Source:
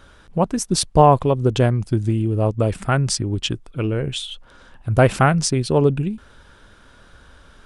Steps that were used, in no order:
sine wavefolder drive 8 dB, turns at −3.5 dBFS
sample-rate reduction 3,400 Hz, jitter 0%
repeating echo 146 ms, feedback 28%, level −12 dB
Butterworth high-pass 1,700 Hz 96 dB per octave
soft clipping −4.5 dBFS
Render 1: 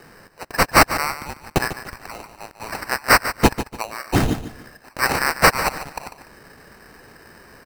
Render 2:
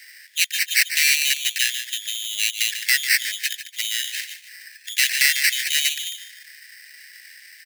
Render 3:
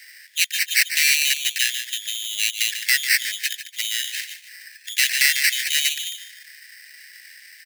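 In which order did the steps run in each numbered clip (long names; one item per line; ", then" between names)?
soft clipping, then Butterworth high-pass, then sample-rate reduction, then sine wavefolder, then repeating echo
soft clipping, then repeating echo, then sine wavefolder, then sample-rate reduction, then Butterworth high-pass
repeating echo, then soft clipping, then sine wavefolder, then sample-rate reduction, then Butterworth high-pass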